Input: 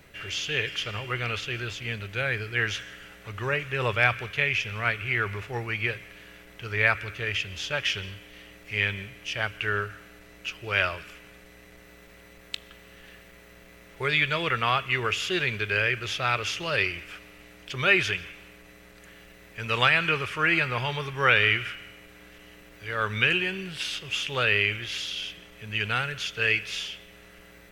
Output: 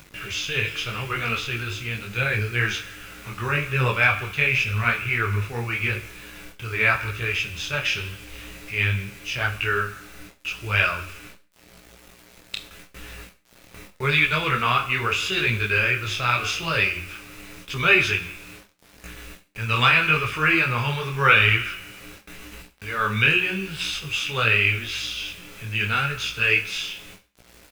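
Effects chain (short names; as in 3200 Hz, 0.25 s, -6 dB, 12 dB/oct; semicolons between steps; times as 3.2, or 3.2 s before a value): gate with hold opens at -39 dBFS; low shelf 75 Hz +3.5 dB; comb 0.8 ms, depth 37%; de-hum 90.68 Hz, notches 17; upward compressor, threshold -37 dBFS; bit-crush 8-bit; Schroeder reverb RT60 0.38 s, combs from 30 ms, DRR 11 dB; detuned doubles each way 29 cents; gain +6.5 dB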